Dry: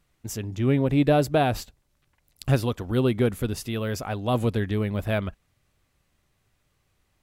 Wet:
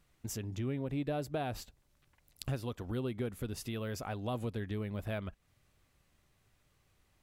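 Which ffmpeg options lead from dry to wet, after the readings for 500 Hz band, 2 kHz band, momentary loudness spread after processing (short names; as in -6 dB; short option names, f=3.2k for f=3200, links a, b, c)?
-14.0 dB, -13.0 dB, 5 LU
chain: -af "acompressor=threshold=-38dB:ratio=2.5,volume=-1.5dB"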